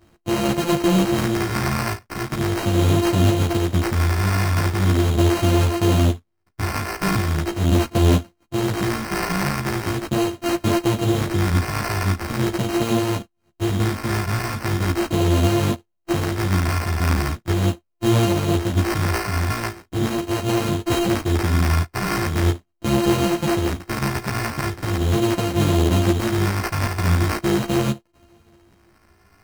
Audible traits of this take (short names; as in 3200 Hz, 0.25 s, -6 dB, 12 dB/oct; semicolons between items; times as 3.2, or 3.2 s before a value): a buzz of ramps at a fixed pitch in blocks of 128 samples; phasing stages 2, 0.4 Hz, lowest notch 420–3000 Hz; aliases and images of a low sample rate 3500 Hz, jitter 0%; a shimmering, thickened sound